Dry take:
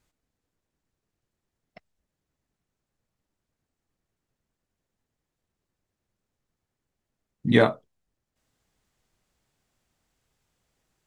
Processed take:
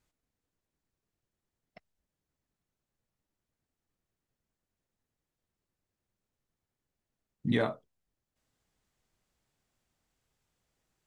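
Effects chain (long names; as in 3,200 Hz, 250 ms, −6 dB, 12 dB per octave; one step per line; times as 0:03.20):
brickwall limiter −12.5 dBFS, peak gain reduction 7.5 dB
level −5 dB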